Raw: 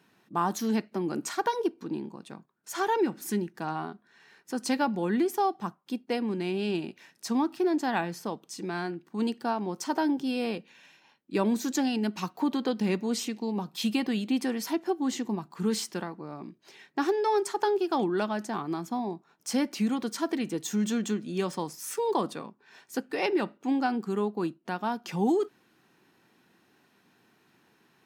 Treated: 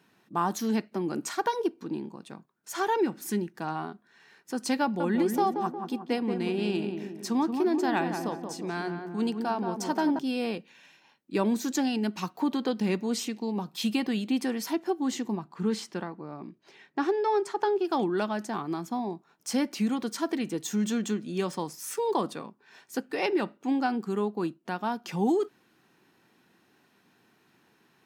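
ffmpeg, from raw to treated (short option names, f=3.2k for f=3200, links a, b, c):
-filter_complex "[0:a]asettb=1/sr,asplit=3[a][b][c];[a]atrim=end=4.824[d];[b]atrim=start=4.82:end=10.19,asetpts=PTS-STARTPTS,afade=t=in:d=0.004:c=qsin,afade=t=out:st=5.366:d=0.004:c=qsin,asplit=2[e][f];[f]adelay=179,lowpass=f=1.3k:p=1,volume=-5dB,asplit=2[g][h];[h]adelay=179,lowpass=f=1.3k:p=1,volume=0.53,asplit=2[i][j];[j]adelay=179,lowpass=f=1.3k:p=1,volume=0.53,asplit=2[k][l];[l]adelay=179,lowpass=f=1.3k:p=1,volume=0.53,asplit=2[m][n];[n]adelay=179,lowpass=f=1.3k:p=1,volume=0.53,asplit=2[o][p];[p]adelay=179,lowpass=f=1.3k:p=1,volume=0.53,asplit=2[q][r];[r]adelay=179,lowpass=f=1.3k:p=1,volume=0.53[s];[e][g][i][k][m][o][q][s]amix=inputs=8:normalize=0,atrim=end_sample=236817[t];[c]atrim=start=10.186[u];[d][t]acrossfade=d=0.004:c1=hsin:c2=qsin[v];[v][u]acrossfade=d=0.004:c1=qsin:c2=hsin,asettb=1/sr,asplit=3[w][x][y];[w]atrim=end=15.374[z];[x]atrim=start=15.37:end=17.85,asetpts=PTS-STARTPTS,afade=t=in:d=0.004:c=qsin,afade=t=out:st=2.476:d=0.004:c=qsin,aemphasis=mode=reproduction:type=50kf[aa];[y]atrim=start=17.846[ab];[z][aa]acrossfade=d=0.004:c1=hsin:c2=qsin[ac];[ac][ab]acrossfade=d=0.004:c1=qsin:c2=hsin"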